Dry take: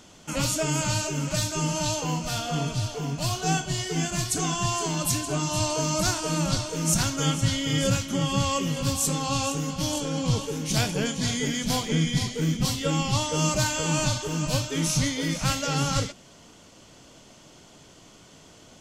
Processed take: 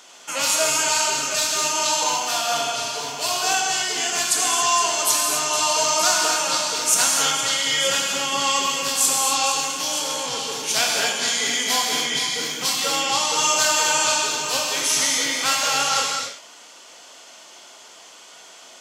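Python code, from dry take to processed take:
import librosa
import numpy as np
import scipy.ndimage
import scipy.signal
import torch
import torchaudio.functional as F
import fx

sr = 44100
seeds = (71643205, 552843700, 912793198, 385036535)

y = scipy.signal.sosfilt(scipy.signal.butter(2, 720.0, 'highpass', fs=sr, output='sos'), x)
y = fx.rev_gated(y, sr, seeds[0], gate_ms=300, shape='flat', drr_db=-1.0)
y = fx.transformer_sat(y, sr, knee_hz=1900.0, at=(9.66, 10.64))
y = F.gain(torch.from_numpy(y), 6.0).numpy()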